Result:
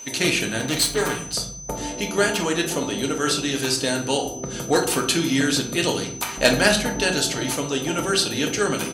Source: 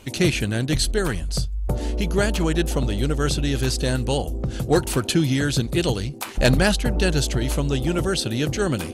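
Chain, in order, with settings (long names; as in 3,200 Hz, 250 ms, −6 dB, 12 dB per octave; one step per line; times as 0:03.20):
0:00.59–0:01.33: lower of the sound and its delayed copy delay 6.8 ms
high-pass filter 560 Hz 6 dB per octave
comb filter 4.3 ms, depth 32%
steady tone 6,100 Hz −41 dBFS
on a send: convolution reverb RT60 0.60 s, pre-delay 3 ms, DRR 2.5 dB
on the sum: level +2.5 dB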